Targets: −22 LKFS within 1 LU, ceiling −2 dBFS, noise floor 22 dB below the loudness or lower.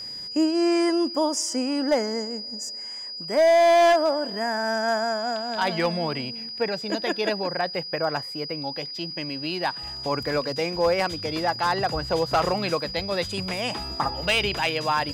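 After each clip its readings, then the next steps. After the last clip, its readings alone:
share of clipped samples 1.0%; peaks flattened at −14.0 dBFS; interfering tone 4,900 Hz; level of the tone −33 dBFS; integrated loudness −24.5 LKFS; sample peak −14.0 dBFS; target loudness −22.0 LKFS
→ clipped peaks rebuilt −14 dBFS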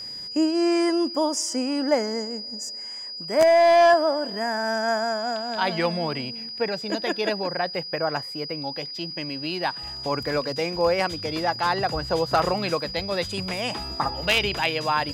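share of clipped samples 0.0%; interfering tone 4,900 Hz; level of the tone −33 dBFS
→ notch filter 4,900 Hz, Q 30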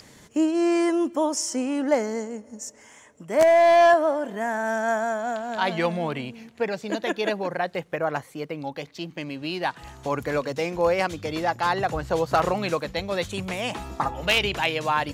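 interfering tone none found; integrated loudness −24.5 LKFS; sample peak −5.0 dBFS; target loudness −22.0 LKFS
→ level +2.5 dB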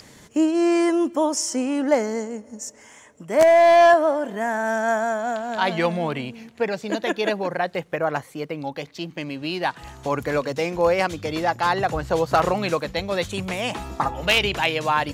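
integrated loudness −22.0 LKFS; sample peak −2.5 dBFS; background noise floor −49 dBFS

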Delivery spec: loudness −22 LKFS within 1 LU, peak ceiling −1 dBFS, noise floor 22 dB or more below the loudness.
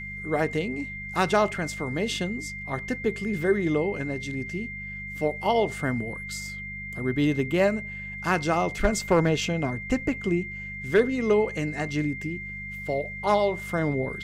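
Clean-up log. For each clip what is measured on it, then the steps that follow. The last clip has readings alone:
mains hum 50 Hz; hum harmonics up to 200 Hz; level of the hum −39 dBFS; interfering tone 2,100 Hz; level of the tone −35 dBFS; integrated loudness −27.0 LKFS; sample peak −10.5 dBFS; target loudness −22.0 LKFS
→ hum removal 50 Hz, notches 4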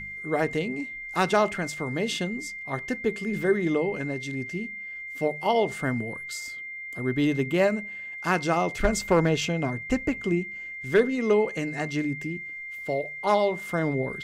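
mains hum none found; interfering tone 2,100 Hz; level of the tone −35 dBFS
→ notch filter 2,100 Hz, Q 30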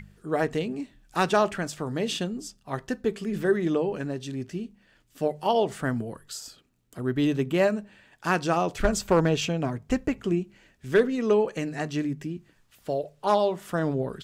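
interfering tone none found; integrated loudness −27.0 LKFS; sample peak −11.0 dBFS; target loudness −22.0 LKFS
→ level +5 dB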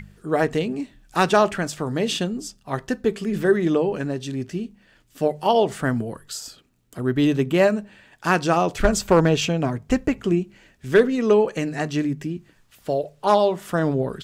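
integrated loudness −22.0 LKFS; sample peak −6.0 dBFS; background noise floor −59 dBFS

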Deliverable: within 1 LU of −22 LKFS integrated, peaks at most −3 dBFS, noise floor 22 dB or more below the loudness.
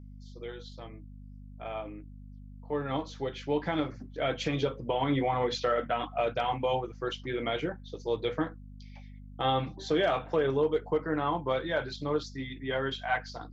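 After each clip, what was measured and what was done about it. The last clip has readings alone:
mains hum 50 Hz; hum harmonics up to 250 Hz; level of the hum −44 dBFS; integrated loudness −31.5 LKFS; sample peak −16.5 dBFS; target loudness −22.0 LKFS
→ hum removal 50 Hz, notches 5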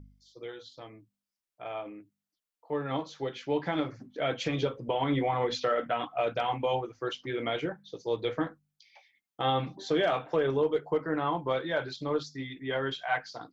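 mains hum none found; integrated loudness −31.5 LKFS; sample peak −16.0 dBFS; target loudness −22.0 LKFS
→ level +9.5 dB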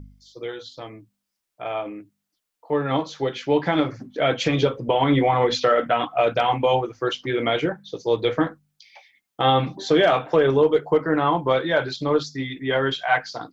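integrated loudness −22.0 LKFS; sample peak −6.5 dBFS; background noise floor −81 dBFS

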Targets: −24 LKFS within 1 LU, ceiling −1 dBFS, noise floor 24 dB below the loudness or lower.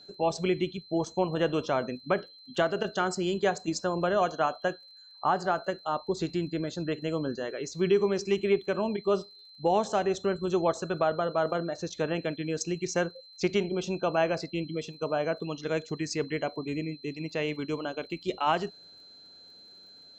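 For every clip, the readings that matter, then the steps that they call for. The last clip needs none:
crackle rate 26 per second; interfering tone 4,100 Hz; level of the tone −50 dBFS; integrated loudness −30.0 LKFS; sample peak −14.5 dBFS; target loudness −24.0 LKFS
→ click removal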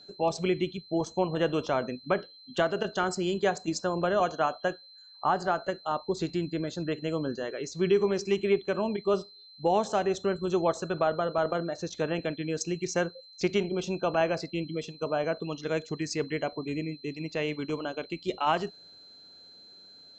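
crackle rate 0 per second; interfering tone 4,100 Hz; level of the tone −50 dBFS
→ notch filter 4,100 Hz, Q 30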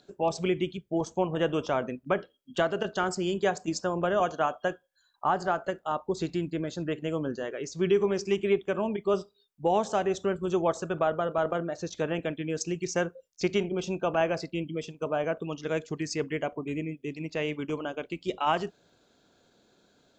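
interfering tone none found; integrated loudness −30.0 LKFS; sample peak −14.5 dBFS; target loudness −24.0 LKFS
→ level +6 dB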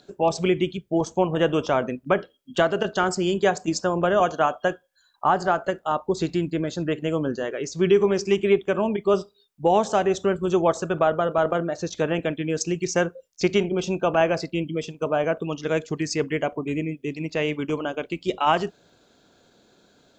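integrated loudness −24.0 LKFS; sample peak −8.5 dBFS; background noise floor −62 dBFS

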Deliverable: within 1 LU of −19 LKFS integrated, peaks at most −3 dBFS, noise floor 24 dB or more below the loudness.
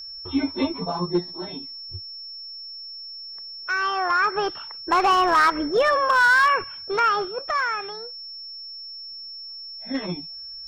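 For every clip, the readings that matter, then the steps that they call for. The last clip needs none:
share of clipped samples 0.5%; peaks flattened at −12.5 dBFS; interfering tone 5,400 Hz; level of the tone −35 dBFS; integrated loudness −22.0 LKFS; sample peak −12.5 dBFS; target loudness −19.0 LKFS
→ clipped peaks rebuilt −12.5 dBFS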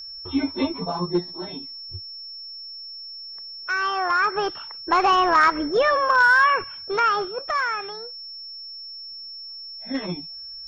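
share of clipped samples 0.0%; interfering tone 5,400 Hz; level of the tone −35 dBFS
→ notch filter 5,400 Hz, Q 30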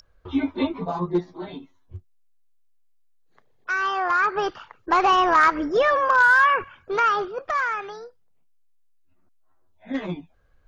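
interfering tone none found; integrated loudness −21.5 LKFS; sample peak −6.0 dBFS; target loudness −19.0 LKFS
→ level +2.5 dB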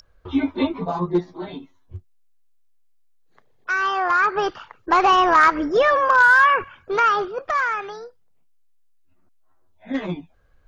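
integrated loudness −19.0 LKFS; sample peak −3.5 dBFS; background noise floor −57 dBFS

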